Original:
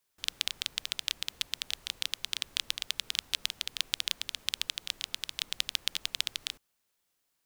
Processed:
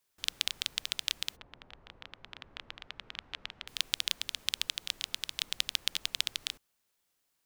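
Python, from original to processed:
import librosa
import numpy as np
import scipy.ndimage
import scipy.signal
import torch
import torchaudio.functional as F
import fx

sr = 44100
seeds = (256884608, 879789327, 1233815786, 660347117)

y = fx.lowpass(x, sr, hz=fx.line((1.35, 1000.0), (3.67, 2100.0)), slope=12, at=(1.35, 3.67), fade=0.02)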